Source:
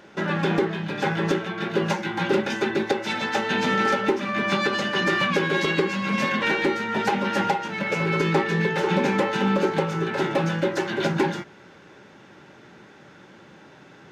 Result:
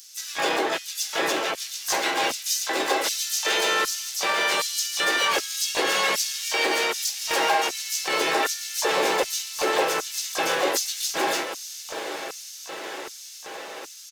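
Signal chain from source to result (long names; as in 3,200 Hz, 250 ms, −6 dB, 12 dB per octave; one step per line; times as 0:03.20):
RIAA equalisation recording
comb filter 6.1 ms, depth 59%
dynamic equaliser 1,400 Hz, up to −4 dB, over −34 dBFS, Q 1.3
in parallel at −1 dB: compressor whose output falls as the input rises −27 dBFS, ratio −0.5
on the sum: feedback delay with all-pass diffusion 922 ms, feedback 68%, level −12 dB
hard clipping −16 dBFS, distortion −16 dB
tuned comb filter 61 Hz, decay 0.28 s, harmonics all, mix 60%
auto-filter high-pass square 1.3 Hz 510–5,800 Hz
pitch-shifted copies added −4 semitones −8 dB, +5 semitones −9 dB, +12 semitones −8 dB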